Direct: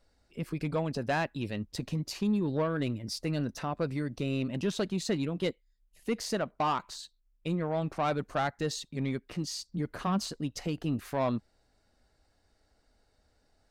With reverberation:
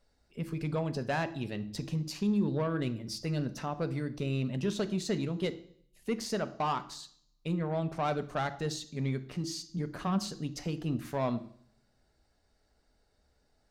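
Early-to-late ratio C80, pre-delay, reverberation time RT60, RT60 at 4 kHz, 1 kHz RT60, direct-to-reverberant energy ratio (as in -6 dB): 19.0 dB, 3 ms, 0.60 s, 0.65 s, 0.55 s, 11.0 dB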